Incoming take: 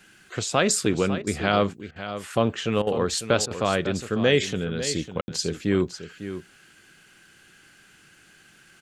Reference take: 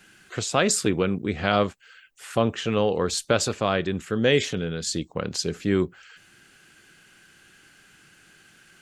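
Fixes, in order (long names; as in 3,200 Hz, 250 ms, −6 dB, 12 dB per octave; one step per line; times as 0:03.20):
ambience match 0:05.21–0:05.28
repair the gap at 0:01.22/0:01.91/0:02.82/0:03.46, 48 ms
echo removal 551 ms −11.5 dB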